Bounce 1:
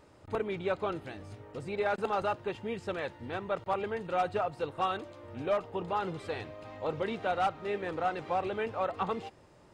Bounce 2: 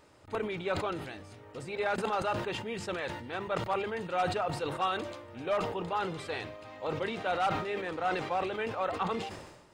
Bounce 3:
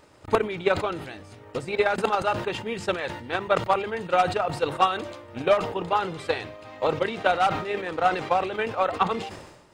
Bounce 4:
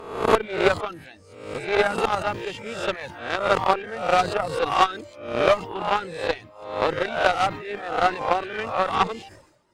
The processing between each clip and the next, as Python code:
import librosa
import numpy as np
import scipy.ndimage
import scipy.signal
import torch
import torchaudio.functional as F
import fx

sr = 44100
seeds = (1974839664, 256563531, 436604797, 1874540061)

y1 = fx.tilt_shelf(x, sr, db=-3.0, hz=1100.0)
y1 = fx.hum_notches(y1, sr, base_hz=50, count=4)
y1 = fx.sustainer(y1, sr, db_per_s=53.0)
y2 = fx.transient(y1, sr, attack_db=11, sustain_db=-2)
y2 = y2 * 10.0 ** (4.5 / 20.0)
y3 = fx.spec_swells(y2, sr, rise_s=0.91)
y3 = fx.dereverb_blind(y3, sr, rt60_s=0.68)
y3 = fx.cheby_harmonics(y3, sr, harmonics=(3, 4, 7), levels_db=(-17, -25, -30), full_scale_db=-5.5)
y3 = y3 * 10.0 ** (4.0 / 20.0)